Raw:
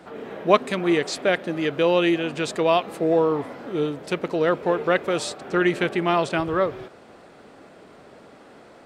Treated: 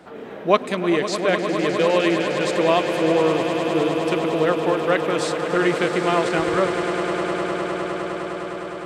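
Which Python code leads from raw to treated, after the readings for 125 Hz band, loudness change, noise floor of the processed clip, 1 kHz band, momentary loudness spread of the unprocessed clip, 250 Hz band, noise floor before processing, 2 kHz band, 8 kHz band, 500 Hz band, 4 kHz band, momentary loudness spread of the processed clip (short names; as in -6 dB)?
+2.5 dB, +1.5 dB, -34 dBFS, +3.0 dB, 7 LU, +2.5 dB, -49 dBFS, +3.0 dB, +3.0 dB, +2.5 dB, +3.0 dB, 8 LU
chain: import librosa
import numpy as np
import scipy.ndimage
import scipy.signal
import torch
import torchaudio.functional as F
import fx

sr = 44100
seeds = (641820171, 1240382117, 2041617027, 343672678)

y = fx.echo_swell(x, sr, ms=102, loudest=8, wet_db=-12.0)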